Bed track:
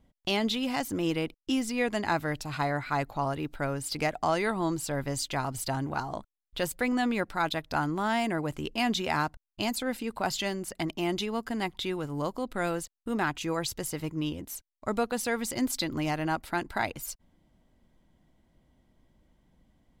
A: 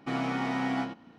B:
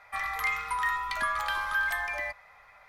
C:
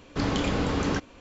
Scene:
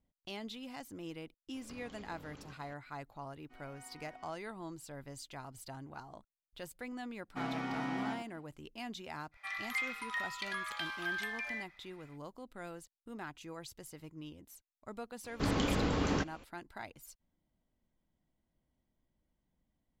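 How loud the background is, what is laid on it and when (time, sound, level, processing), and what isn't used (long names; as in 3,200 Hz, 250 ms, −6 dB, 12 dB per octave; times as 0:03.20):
bed track −16 dB
0:01.54: mix in C −10 dB + downward compressor 10 to 1, threshold −40 dBFS
0:03.43: mix in A −13.5 dB + resonators tuned to a chord B3 major, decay 0.25 s
0:07.29: mix in A −7.5 dB, fades 0.10 s
0:09.31: mix in B −14.5 dB, fades 0.05 s + meter weighting curve D
0:15.24: mix in C −5.5 dB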